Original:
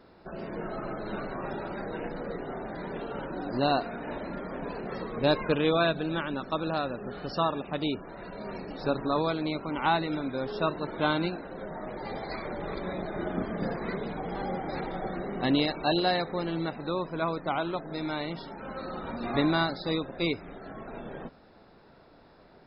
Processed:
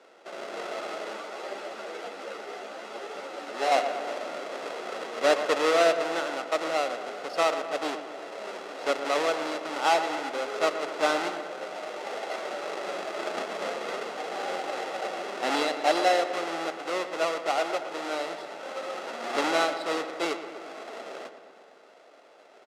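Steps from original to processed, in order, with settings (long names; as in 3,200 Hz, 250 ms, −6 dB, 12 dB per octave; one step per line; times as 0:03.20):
each half-wave held at its own peak
high-pass filter 360 Hz 24 dB per octave
high-frequency loss of the air 77 metres
comb filter 1.5 ms, depth 36%
feedback echo with a low-pass in the loop 119 ms, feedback 68%, low-pass 3,200 Hz, level −10.5 dB
0:01.13–0:03.72: string-ensemble chorus
level −1 dB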